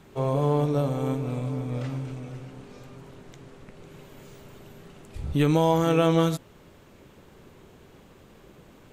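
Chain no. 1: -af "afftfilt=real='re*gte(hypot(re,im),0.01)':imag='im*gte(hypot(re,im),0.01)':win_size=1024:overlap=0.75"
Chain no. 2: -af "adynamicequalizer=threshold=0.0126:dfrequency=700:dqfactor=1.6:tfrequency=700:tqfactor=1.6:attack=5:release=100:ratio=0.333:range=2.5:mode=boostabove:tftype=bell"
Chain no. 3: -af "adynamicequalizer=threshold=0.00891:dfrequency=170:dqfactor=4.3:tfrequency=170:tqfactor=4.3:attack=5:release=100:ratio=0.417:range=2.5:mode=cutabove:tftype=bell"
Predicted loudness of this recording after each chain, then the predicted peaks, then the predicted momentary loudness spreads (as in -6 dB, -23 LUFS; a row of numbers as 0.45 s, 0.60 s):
-25.5 LUFS, -23.5 LUFS, -26.0 LUFS; -10.5 dBFS, -7.5 dBFS, -10.5 dBFS; 18 LU, 18 LU, 18 LU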